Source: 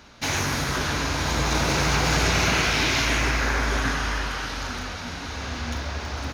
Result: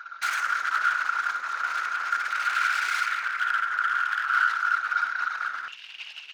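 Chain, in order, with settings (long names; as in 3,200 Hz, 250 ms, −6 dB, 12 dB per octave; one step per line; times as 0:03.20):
spectral envelope exaggerated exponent 2
downward compressor 6 to 1, threshold −26 dBFS, peak gain reduction 8 dB
wave folding −28.5 dBFS
high-pass with resonance 1,400 Hz, resonance Q 13, from 0:05.68 2,800 Hz
flutter between parallel walls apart 10.2 metres, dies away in 0.23 s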